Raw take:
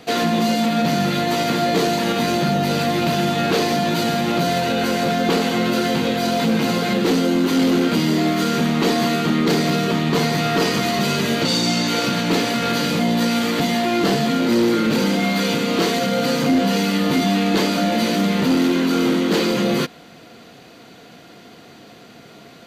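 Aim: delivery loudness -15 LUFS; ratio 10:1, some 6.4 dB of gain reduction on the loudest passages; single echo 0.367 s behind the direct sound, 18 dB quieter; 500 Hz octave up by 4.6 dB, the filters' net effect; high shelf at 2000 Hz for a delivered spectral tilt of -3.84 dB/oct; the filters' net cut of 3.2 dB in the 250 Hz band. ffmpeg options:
-af "equalizer=f=250:t=o:g=-6.5,equalizer=f=500:t=o:g=7.5,highshelf=f=2k:g=4,acompressor=threshold=-18dB:ratio=10,aecho=1:1:367:0.126,volume=6.5dB"

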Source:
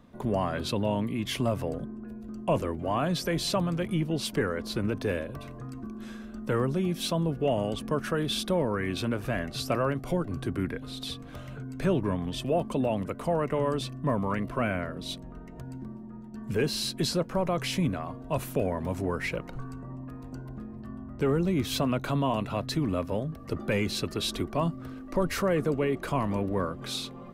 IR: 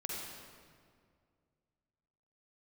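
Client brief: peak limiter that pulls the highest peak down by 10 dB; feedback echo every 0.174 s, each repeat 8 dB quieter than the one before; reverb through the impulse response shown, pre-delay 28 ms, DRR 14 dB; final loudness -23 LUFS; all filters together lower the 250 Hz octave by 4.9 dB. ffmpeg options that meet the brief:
-filter_complex "[0:a]equalizer=f=250:t=o:g=-7,alimiter=level_in=1.5dB:limit=-24dB:level=0:latency=1,volume=-1.5dB,aecho=1:1:174|348|522|696|870:0.398|0.159|0.0637|0.0255|0.0102,asplit=2[a][b];[1:a]atrim=start_sample=2205,adelay=28[c];[b][c]afir=irnorm=-1:irlink=0,volume=-15.5dB[d];[a][d]amix=inputs=2:normalize=0,volume=12dB"

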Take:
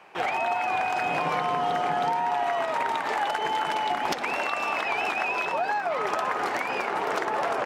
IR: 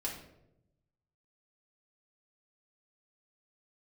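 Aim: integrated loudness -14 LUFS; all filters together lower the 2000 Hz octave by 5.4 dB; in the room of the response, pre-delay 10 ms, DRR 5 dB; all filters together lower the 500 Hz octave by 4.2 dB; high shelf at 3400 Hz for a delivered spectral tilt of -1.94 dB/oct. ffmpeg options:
-filter_complex "[0:a]equalizer=f=500:t=o:g=-5.5,equalizer=f=2k:t=o:g=-4.5,highshelf=f=3.4k:g=-7,asplit=2[a][b];[1:a]atrim=start_sample=2205,adelay=10[c];[b][c]afir=irnorm=-1:irlink=0,volume=-6.5dB[d];[a][d]amix=inputs=2:normalize=0,volume=14.5dB"

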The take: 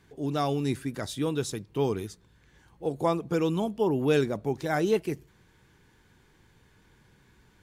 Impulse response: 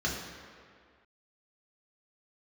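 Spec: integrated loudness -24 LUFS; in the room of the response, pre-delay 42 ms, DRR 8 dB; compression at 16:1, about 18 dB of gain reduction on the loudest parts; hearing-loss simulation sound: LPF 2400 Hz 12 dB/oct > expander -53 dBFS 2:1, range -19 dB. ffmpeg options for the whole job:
-filter_complex "[0:a]acompressor=threshold=-37dB:ratio=16,asplit=2[a][b];[1:a]atrim=start_sample=2205,adelay=42[c];[b][c]afir=irnorm=-1:irlink=0,volume=-16dB[d];[a][d]amix=inputs=2:normalize=0,lowpass=2.4k,agate=range=-19dB:threshold=-53dB:ratio=2,volume=17.5dB"

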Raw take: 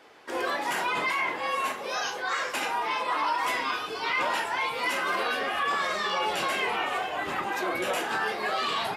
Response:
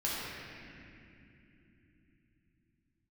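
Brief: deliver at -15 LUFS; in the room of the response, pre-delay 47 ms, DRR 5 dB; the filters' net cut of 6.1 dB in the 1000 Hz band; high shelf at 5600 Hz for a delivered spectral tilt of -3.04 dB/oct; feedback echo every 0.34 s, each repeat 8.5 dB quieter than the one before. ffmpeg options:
-filter_complex "[0:a]equalizer=f=1k:t=o:g=-7.5,highshelf=f=5.6k:g=4.5,aecho=1:1:340|680|1020|1360:0.376|0.143|0.0543|0.0206,asplit=2[a][b];[1:a]atrim=start_sample=2205,adelay=47[c];[b][c]afir=irnorm=-1:irlink=0,volume=-12dB[d];[a][d]amix=inputs=2:normalize=0,volume=13.5dB"

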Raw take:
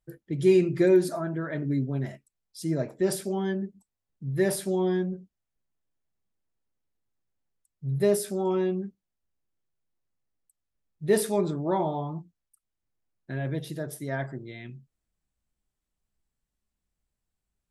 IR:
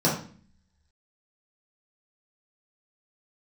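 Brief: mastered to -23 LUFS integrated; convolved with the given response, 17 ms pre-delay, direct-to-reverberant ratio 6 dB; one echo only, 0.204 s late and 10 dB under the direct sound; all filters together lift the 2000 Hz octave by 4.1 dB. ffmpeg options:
-filter_complex "[0:a]equalizer=f=2k:t=o:g=5,aecho=1:1:204:0.316,asplit=2[a][b];[1:a]atrim=start_sample=2205,adelay=17[c];[b][c]afir=irnorm=-1:irlink=0,volume=-20.5dB[d];[a][d]amix=inputs=2:normalize=0"

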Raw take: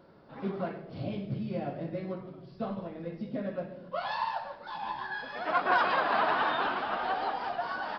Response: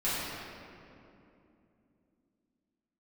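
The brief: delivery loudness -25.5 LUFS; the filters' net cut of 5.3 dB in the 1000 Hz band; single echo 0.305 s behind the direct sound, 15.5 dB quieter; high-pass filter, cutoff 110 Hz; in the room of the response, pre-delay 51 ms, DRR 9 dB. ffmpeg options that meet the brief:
-filter_complex "[0:a]highpass=110,equalizer=f=1k:t=o:g=-7,aecho=1:1:305:0.168,asplit=2[a][b];[1:a]atrim=start_sample=2205,adelay=51[c];[b][c]afir=irnorm=-1:irlink=0,volume=-19dB[d];[a][d]amix=inputs=2:normalize=0,volume=9.5dB"

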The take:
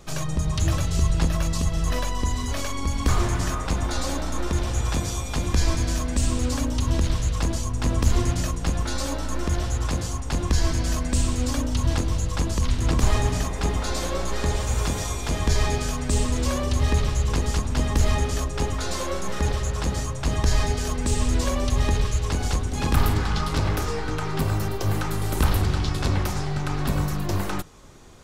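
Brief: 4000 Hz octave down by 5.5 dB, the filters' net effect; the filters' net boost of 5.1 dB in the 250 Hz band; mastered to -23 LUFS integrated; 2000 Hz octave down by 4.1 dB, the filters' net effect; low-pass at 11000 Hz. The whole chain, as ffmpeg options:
-af "lowpass=11k,equalizer=f=250:t=o:g=6.5,equalizer=f=2k:t=o:g=-4,equalizer=f=4k:t=o:g=-6,volume=1.5dB"

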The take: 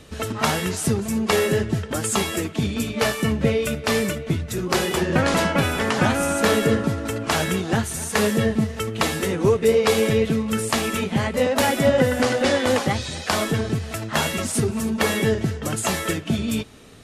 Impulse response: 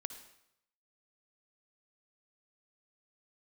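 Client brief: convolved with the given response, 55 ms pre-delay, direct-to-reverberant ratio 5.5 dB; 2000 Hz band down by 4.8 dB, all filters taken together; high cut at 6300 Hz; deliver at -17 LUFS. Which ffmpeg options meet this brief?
-filter_complex "[0:a]lowpass=6.3k,equalizer=f=2k:t=o:g=-6,asplit=2[a][b];[1:a]atrim=start_sample=2205,adelay=55[c];[b][c]afir=irnorm=-1:irlink=0,volume=-3.5dB[d];[a][d]amix=inputs=2:normalize=0,volume=4.5dB"

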